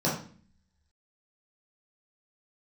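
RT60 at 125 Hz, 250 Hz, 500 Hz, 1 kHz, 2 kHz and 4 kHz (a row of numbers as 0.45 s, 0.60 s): 0.75 s, 0.80 s, 0.45 s, 0.40 s, 0.45 s, 0.40 s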